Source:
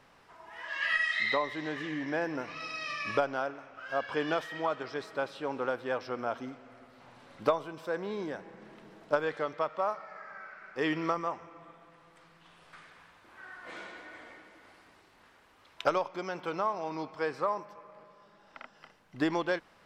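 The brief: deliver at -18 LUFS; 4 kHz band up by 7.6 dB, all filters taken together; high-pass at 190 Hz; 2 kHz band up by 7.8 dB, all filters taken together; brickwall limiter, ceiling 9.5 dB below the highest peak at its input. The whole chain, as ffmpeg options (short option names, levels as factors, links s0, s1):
-af "highpass=190,equalizer=f=2000:t=o:g=7.5,equalizer=f=4000:t=o:g=7,volume=4.73,alimiter=limit=0.631:level=0:latency=1"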